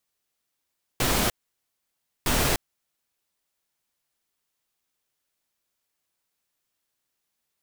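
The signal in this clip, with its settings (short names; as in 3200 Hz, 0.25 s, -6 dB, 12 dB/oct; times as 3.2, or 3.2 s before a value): noise bursts pink, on 0.30 s, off 0.96 s, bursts 2, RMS -23 dBFS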